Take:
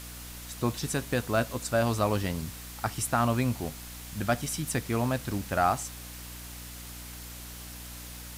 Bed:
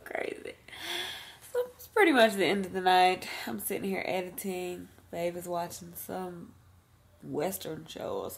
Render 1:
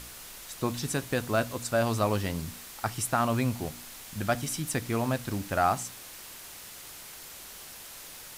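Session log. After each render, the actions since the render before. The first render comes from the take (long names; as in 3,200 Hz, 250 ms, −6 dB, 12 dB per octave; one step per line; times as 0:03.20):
hum removal 60 Hz, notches 5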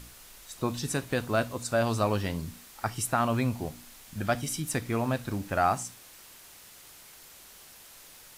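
noise reduction from a noise print 6 dB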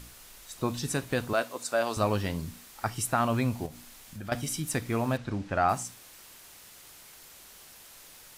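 0:01.33–0:01.97: high-pass filter 360 Hz
0:03.66–0:04.32: downward compressor 2 to 1, threshold −41 dBFS
0:05.17–0:05.69: high-frequency loss of the air 100 metres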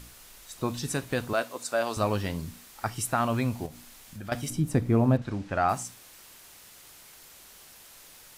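0:04.50–0:05.22: tilt shelving filter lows +9 dB, about 900 Hz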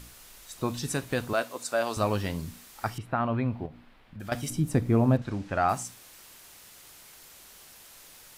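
0:02.98–0:04.20: high-frequency loss of the air 430 metres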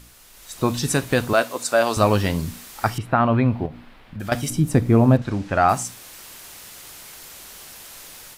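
automatic gain control gain up to 10 dB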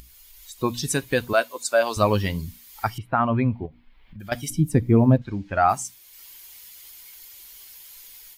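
spectral dynamics exaggerated over time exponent 1.5
upward compression, threshold −38 dBFS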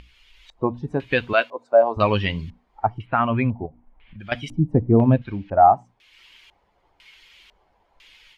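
auto-filter low-pass square 1 Hz 770–2,800 Hz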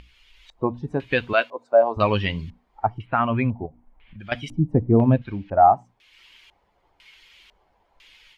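level −1 dB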